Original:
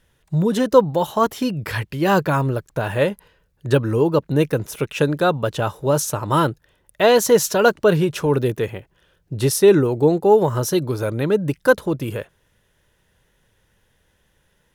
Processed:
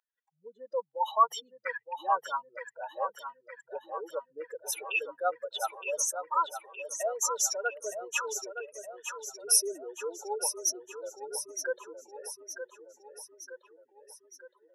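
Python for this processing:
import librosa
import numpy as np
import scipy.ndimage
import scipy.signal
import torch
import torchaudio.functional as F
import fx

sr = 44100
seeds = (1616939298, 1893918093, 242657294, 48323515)

p1 = fx.spec_expand(x, sr, power=3.2)
p2 = scipy.signal.sosfilt(scipy.signal.butter(4, 840.0, 'highpass', fs=sr, output='sos'), p1)
p3 = fx.rider(p2, sr, range_db=5, speed_s=2.0)
p4 = p3 + fx.echo_feedback(p3, sr, ms=916, feedback_pct=54, wet_db=-8.5, dry=0)
y = F.gain(torch.from_numpy(p4), -2.0).numpy()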